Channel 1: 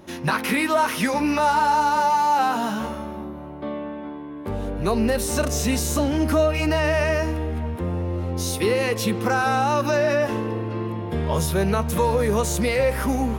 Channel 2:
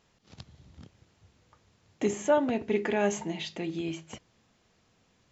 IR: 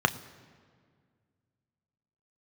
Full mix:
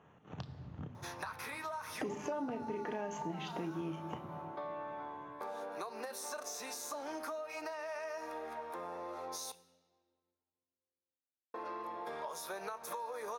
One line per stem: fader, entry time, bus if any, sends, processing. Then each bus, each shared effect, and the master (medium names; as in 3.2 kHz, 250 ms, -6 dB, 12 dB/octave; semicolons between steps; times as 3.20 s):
-6.5 dB, 0.95 s, muted 9.52–11.54 s, send -14.5 dB, high-pass 760 Hz 12 dB/octave; compression, threshold -33 dBFS, peak gain reduction 14 dB
-4.0 dB, 0.00 s, send -3.5 dB, local Wiener filter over 9 samples; peak limiter -23.5 dBFS, peak gain reduction 10 dB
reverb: on, RT60 1.9 s, pre-delay 3 ms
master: compression 4:1, threshold -39 dBFS, peak gain reduction 16 dB